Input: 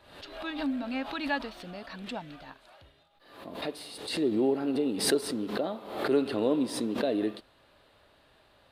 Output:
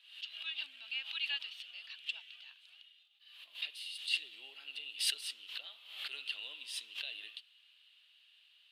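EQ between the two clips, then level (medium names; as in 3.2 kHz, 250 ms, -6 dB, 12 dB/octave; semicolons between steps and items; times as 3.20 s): resonant high-pass 2.9 kHz, resonance Q 6.5; -7.5 dB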